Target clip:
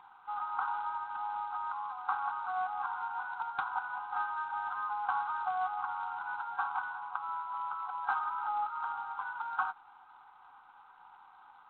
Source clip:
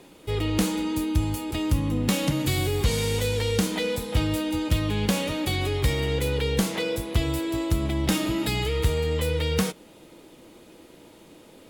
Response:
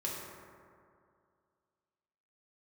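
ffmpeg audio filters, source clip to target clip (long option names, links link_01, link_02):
-af "afftfilt=real='re*between(b*sr/4096,730,1600)':imag='im*between(b*sr/4096,730,1600)':win_size=4096:overlap=0.75,acontrast=37" -ar 8000 -c:a adpcm_g726 -b:a 24k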